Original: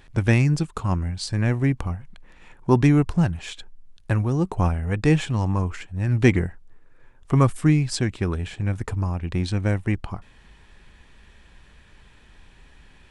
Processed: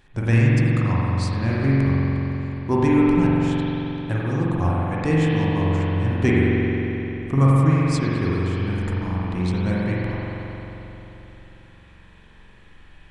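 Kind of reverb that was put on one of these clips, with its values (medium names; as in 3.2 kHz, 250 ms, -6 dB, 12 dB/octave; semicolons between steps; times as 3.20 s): spring tank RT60 3.7 s, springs 44 ms, chirp 60 ms, DRR -6.5 dB; trim -5 dB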